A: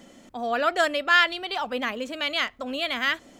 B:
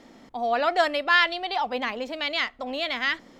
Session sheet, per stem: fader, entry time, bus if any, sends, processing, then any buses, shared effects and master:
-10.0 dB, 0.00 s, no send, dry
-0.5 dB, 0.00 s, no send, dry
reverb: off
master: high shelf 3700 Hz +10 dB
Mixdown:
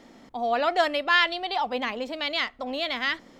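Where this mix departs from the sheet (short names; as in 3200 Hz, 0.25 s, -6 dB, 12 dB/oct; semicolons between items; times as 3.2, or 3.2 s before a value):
stem A -10.0 dB -> -18.0 dB; master: missing high shelf 3700 Hz +10 dB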